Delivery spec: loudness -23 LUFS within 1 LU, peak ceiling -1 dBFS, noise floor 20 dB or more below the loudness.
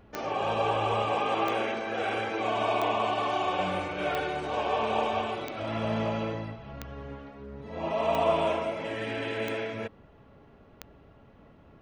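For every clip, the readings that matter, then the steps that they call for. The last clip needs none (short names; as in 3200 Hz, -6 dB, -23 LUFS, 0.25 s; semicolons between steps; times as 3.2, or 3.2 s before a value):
clicks 9; loudness -29.5 LUFS; peak -13.0 dBFS; loudness target -23.0 LUFS
-> de-click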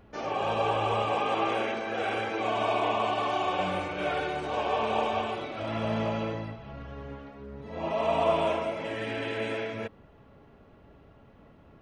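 clicks 0; loudness -29.5 LUFS; peak -13.0 dBFS; loudness target -23.0 LUFS
-> gain +6.5 dB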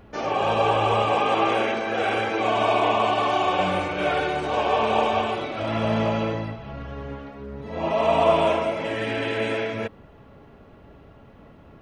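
loudness -23.0 LUFS; peak -6.5 dBFS; noise floor -49 dBFS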